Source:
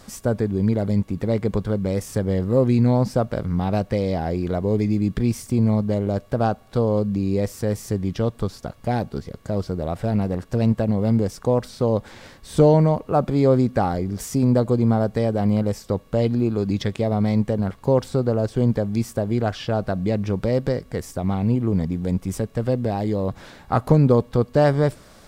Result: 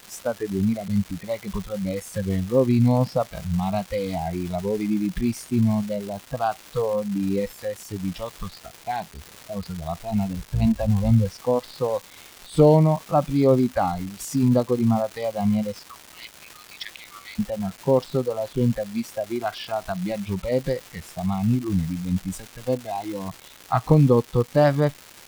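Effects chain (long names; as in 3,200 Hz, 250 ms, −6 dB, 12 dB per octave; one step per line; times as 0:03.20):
0:10.36–0:11.25: sub-octave generator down 1 octave, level −5 dB
0:15.87–0:17.39: elliptic high-pass filter 1,100 Hz
noise reduction from a noise print of the clip's start 20 dB
surface crackle 590 per second −31 dBFS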